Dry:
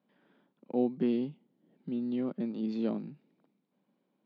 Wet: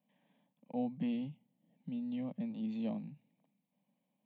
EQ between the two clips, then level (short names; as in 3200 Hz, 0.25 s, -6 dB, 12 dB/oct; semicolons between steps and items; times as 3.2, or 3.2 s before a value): bell 1200 Hz -6 dB 2 oct; notches 60/120 Hz; fixed phaser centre 1400 Hz, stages 6; +1.0 dB